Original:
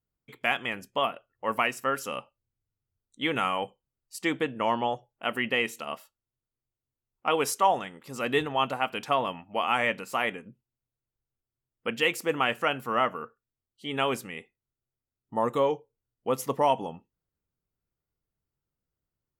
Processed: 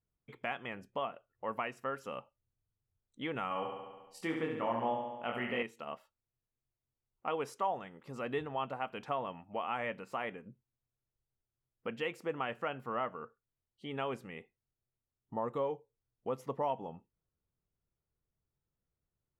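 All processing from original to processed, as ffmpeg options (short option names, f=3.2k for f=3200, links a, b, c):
-filter_complex "[0:a]asettb=1/sr,asplit=3[a][b][c];[a]atrim=end=3.484[d];[b]atrim=start=3.48:end=5.63,asetpts=PTS-STARTPTS,afade=t=in:d=0.004:c=qsin,afade=t=out:st=2.146:d=0.004:c=qsin,asplit=2[e][f];[f]adelay=25,volume=-2.5dB[g];[e][g]amix=inputs=2:normalize=0,atrim=end_sample=94815,aecho=1:1:70|140|210|280|350|420|490|560:0.531|0.313|0.185|0.109|0.0643|0.038|0.0224|0.0132,atrim=end_sample=94815[h];[c]atrim=start=5.626[i];[d][h]acrossfade=d=0.004:c1=hsin:c2=qsin[j];[j][i]acrossfade=d=0.004:c1=qsin:c2=hsin,lowpass=f=1.2k:p=1,equalizer=f=280:t=o:w=0.76:g=-3,acompressor=threshold=-46dB:ratio=1.5"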